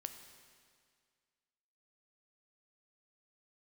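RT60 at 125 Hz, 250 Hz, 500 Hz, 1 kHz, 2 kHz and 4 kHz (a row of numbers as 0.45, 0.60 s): 2.0, 2.0, 2.0, 2.0, 2.0, 1.9 s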